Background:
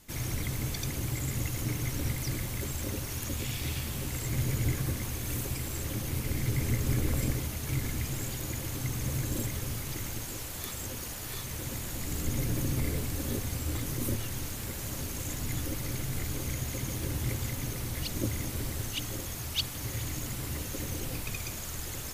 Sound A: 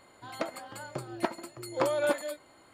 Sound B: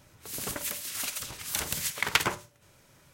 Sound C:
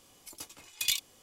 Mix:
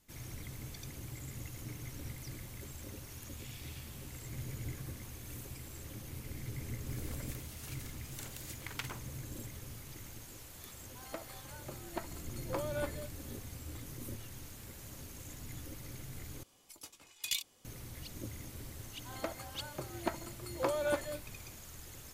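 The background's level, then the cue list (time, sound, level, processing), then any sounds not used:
background −12.5 dB
0:06.64: mix in B −17.5 dB
0:10.73: mix in A −10.5 dB
0:16.43: overwrite with C −6.5 dB
0:18.83: mix in A −5.5 dB

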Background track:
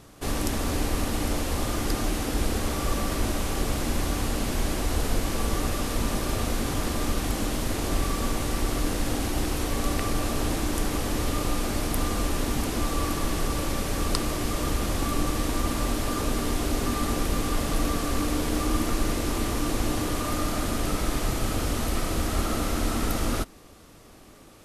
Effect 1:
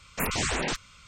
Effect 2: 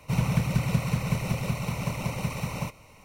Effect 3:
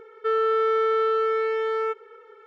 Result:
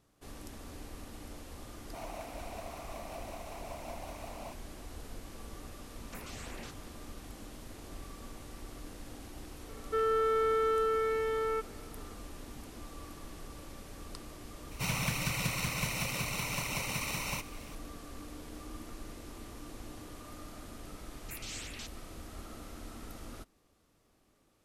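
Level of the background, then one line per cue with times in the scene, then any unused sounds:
background track −20 dB
0:01.84: mix in 2 −16.5 dB + high-pass with resonance 680 Hz, resonance Q 8.1
0:05.95: mix in 1 −12.5 dB + downward compressor, threshold −31 dBFS
0:09.68: mix in 3 −7 dB
0:14.71: mix in 2 −3.5 dB + tilt shelving filter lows −8.5 dB
0:21.11: mix in 1 −11.5 dB + Chebyshev high-pass filter 2,900 Hz

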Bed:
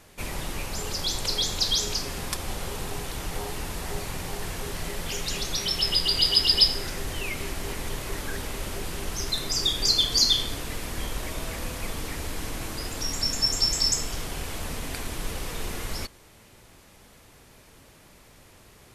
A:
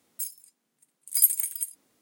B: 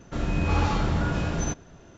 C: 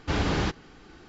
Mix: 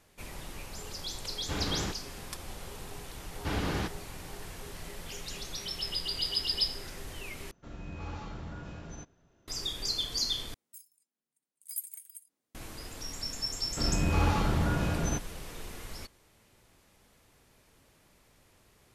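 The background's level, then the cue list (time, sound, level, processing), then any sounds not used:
bed −10.5 dB
0:01.41: mix in C −8 dB
0:03.37: mix in C −6 dB
0:07.51: overwrite with B −17 dB
0:10.54: overwrite with A −17.5 dB
0:13.65: mix in B −3 dB

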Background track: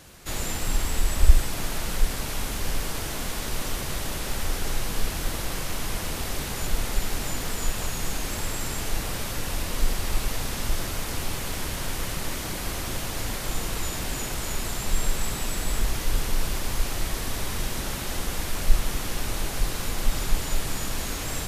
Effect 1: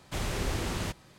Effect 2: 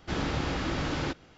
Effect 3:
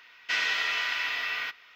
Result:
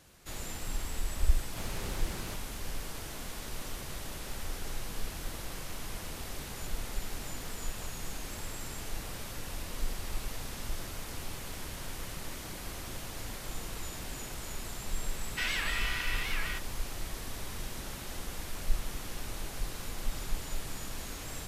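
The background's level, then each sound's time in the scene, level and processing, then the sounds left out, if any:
background track −10.5 dB
0:01.44: mix in 1 −9 dB
0:15.08: mix in 3 −6 dB + wow of a warped record 78 rpm, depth 250 cents
not used: 2

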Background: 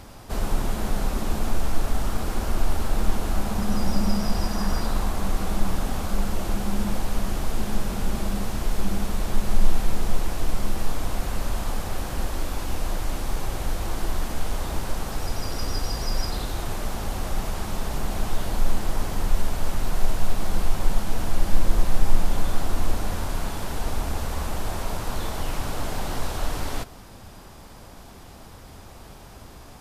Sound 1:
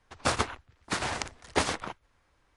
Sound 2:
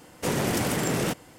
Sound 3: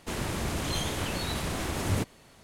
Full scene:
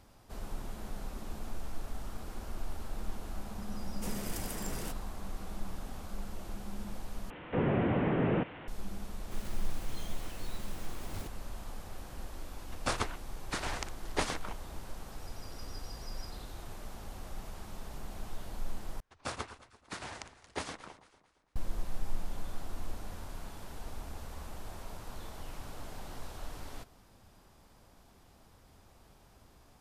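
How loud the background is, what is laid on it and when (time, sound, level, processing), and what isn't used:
background −16 dB
0:03.79: mix in 2 −17.5 dB + high-shelf EQ 6,700 Hz +11.5 dB
0:07.30: overwrite with 2 −1.5 dB + linear delta modulator 16 kbit/s, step −39.5 dBFS
0:09.24: mix in 3 −17 dB + one scale factor per block 3 bits
0:12.61: mix in 1 −6 dB
0:19.00: overwrite with 1 −12 dB + delay that swaps between a low-pass and a high-pass 113 ms, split 1,200 Hz, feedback 61%, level −12 dB

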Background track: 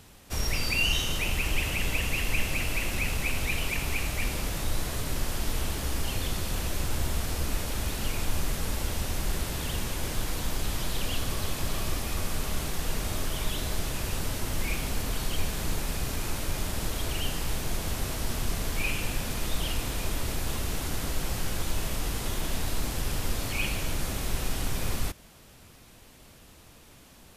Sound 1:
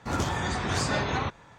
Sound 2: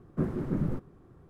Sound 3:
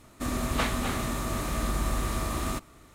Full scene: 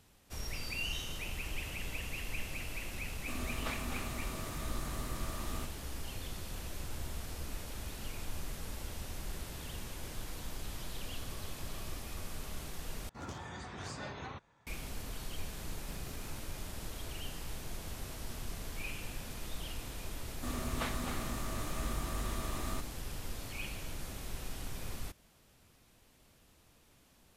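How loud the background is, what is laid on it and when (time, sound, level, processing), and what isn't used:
background track −12 dB
0:03.07: mix in 3 −12 dB
0:13.09: overwrite with 1 −16 dB
0:15.70: mix in 2 −18 dB + comparator with hysteresis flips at −32 dBFS
0:20.22: mix in 3 −9.5 dB

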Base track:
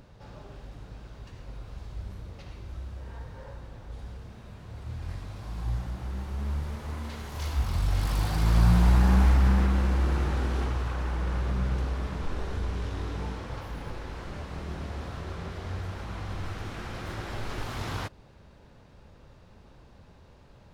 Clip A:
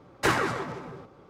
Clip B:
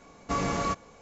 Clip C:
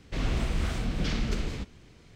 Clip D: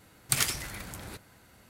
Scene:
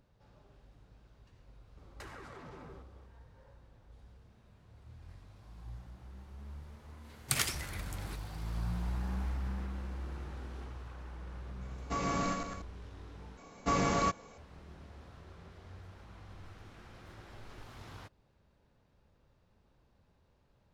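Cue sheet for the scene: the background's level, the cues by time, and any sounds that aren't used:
base track −16 dB
0:01.77: mix in A −9 dB + downward compressor 16 to 1, threshold −36 dBFS
0:06.99: mix in D −3 dB, fades 0.10 s + high-shelf EQ 5,700 Hz −4 dB
0:11.61: mix in B −6.5 dB + feedback delay that plays each chunk backwards 103 ms, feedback 55%, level −4 dB
0:13.37: overwrite with B −1 dB
not used: C

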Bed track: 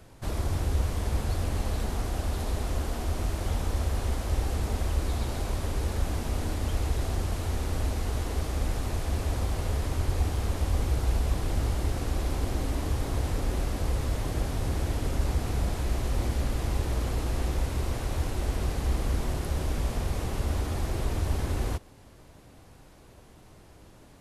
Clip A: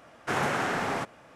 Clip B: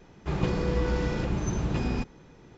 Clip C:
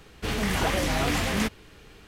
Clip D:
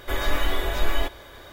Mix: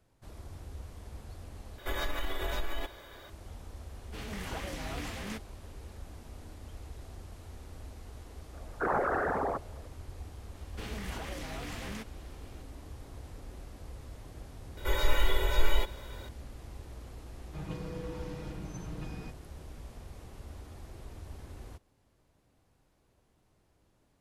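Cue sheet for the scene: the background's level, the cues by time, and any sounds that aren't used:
bed track −17.5 dB
0:01.78: overwrite with D −5.5 dB + downward compressor, threshold −22 dBFS
0:03.90: mix in C −14 dB
0:08.53: mix in A −1.5 dB + spectral envelope exaggerated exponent 3
0:10.55: mix in C −8 dB + downward compressor, threshold −29 dBFS
0:14.77: mix in D −7.5 dB + comb filter 2.1 ms, depth 99%
0:17.27: mix in B −16 dB + comb filter 6.4 ms, depth 90%

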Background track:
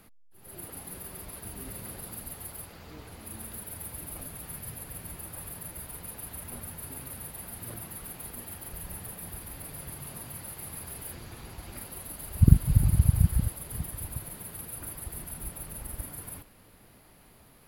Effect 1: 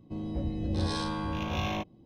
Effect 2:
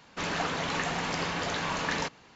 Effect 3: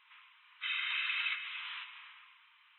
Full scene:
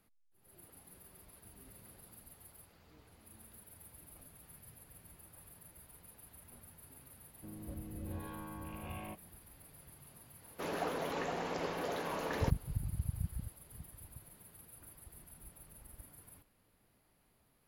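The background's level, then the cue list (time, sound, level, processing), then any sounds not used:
background track −16 dB
0:07.32: mix in 1 −13.5 dB + Butterworth low-pass 2,800 Hz
0:10.42: mix in 2 −14 dB + parametric band 460 Hz +13.5 dB 2 octaves
not used: 3

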